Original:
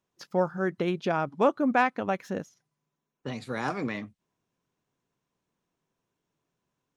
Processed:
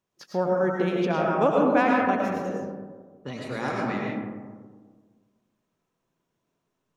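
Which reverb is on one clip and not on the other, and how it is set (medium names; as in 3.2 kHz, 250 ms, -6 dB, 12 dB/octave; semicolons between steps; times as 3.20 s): algorithmic reverb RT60 1.6 s, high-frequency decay 0.3×, pre-delay 65 ms, DRR -2.5 dB; trim -1 dB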